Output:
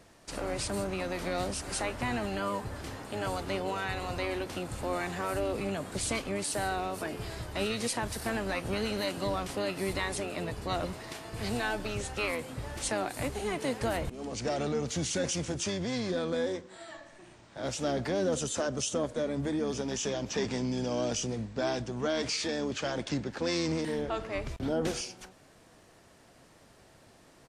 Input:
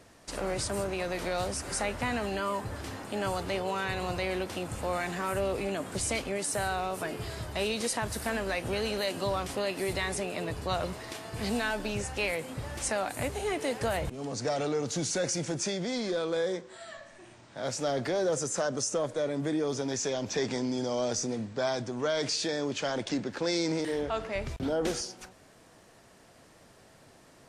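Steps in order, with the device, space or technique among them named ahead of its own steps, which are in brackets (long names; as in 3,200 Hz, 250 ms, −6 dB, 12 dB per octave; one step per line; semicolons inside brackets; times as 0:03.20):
octave pedal (pitch-shifted copies added −12 semitones −7 dB)
level −2 dB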